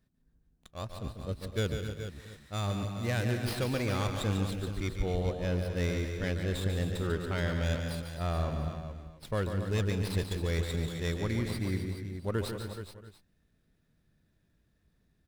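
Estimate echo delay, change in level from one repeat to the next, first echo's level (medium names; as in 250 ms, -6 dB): 144 ms, no regular repeats, -7.5 dB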